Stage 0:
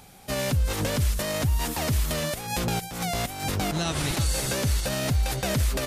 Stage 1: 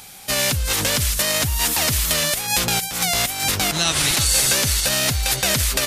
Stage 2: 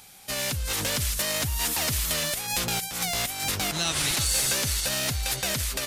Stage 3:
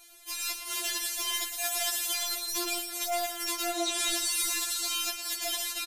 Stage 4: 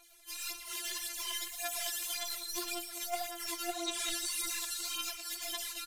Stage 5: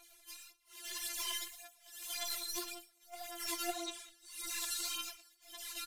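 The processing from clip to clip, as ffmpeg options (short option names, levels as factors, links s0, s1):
-af "acontrast=80,tiltshelf=f=1200:g=-7"
-af "dynaudnorm=f=130:g=9:m=3.76,asoftclip=type=tanh:threshold=0.531,volume=0.355"
-filter_complex "[0:a]asplit=2[s0][s1];[s1]aecho=0:1:116:0.316[s2];[s0][s2]amix=inputs=2:normalize=0,afftfilt=real='re*4*eq(mod(b,16),0)':imag='im*4*eq(mod(b,16),0)':win_size=2048:overlap=0.75,volume=0.841"
-af "aphaser=in_gain=1:out_gain=1:delay=3.6:decay=0.57:speed=1.8:type=sinusoidal,volume=0.376"
-af "tremolo=f=0.84:d=0.97"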